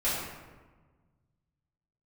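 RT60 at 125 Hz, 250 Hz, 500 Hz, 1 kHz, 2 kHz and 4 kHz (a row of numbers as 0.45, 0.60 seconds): 2.4, 1.9, 1.4, 1.3, 1.1, 0.75 seconds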